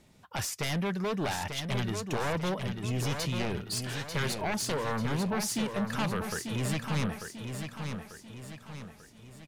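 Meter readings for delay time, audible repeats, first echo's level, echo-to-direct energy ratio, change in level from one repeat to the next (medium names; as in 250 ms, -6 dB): 892 ms, 5, -6.5 dB, -5.5 dB, -6.5 dB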